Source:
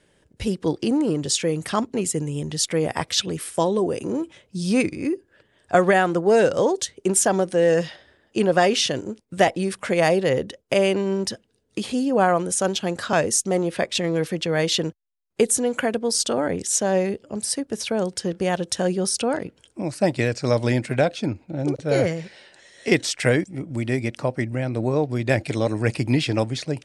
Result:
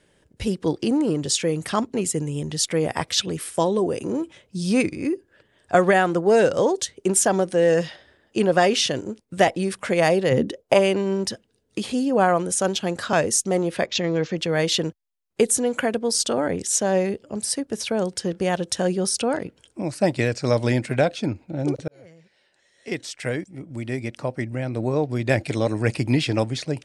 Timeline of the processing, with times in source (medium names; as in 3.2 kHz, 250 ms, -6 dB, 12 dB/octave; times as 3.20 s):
10.31–10.78 s: peaking EQ 150 Hz -> 990 Hz +14 dB
13.86–14.38 s: steep low-pass 7.1 kHz 96 dB/octave
21.88–25.31 s: fade in